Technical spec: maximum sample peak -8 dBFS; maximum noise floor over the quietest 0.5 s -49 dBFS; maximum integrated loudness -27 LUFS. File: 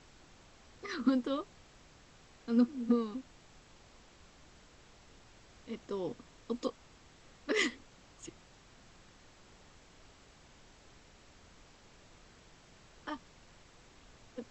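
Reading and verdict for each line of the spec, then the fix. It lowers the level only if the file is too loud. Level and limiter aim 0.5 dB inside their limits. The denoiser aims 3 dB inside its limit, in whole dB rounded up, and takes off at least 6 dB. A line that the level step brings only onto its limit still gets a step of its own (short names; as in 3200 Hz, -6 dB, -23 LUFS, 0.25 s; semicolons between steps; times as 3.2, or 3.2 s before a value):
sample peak -17.0 dBFS: OK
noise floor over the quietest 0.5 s -60 dBFS: OK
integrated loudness -35.5 LUFS: OK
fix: none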